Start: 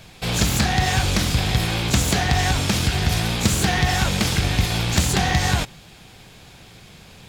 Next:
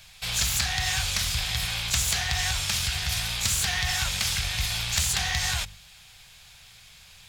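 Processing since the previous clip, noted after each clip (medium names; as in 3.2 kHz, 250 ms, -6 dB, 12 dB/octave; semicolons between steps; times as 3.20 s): amplifier tone stack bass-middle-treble 10-0-10; de-hum 48.73 Hz, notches 11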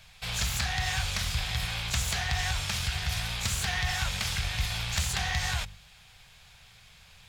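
treble shelf 3.1 kHz -9 dB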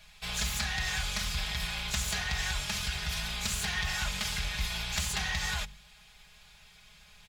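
comb 4.8 ms, depth 74%; trim -3.5 dB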